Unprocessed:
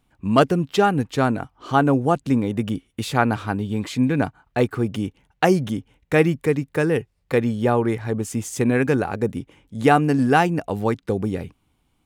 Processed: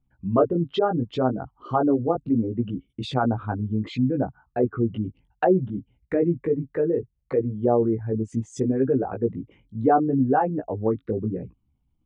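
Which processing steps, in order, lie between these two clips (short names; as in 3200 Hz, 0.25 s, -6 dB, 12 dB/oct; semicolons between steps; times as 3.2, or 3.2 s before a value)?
formant sharpening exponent 2; chorus 0.68 Hz, delay 15 ms, depth 3.3 ms; treble ducked by the level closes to 1100 Hz, closed at -19.5 dBFS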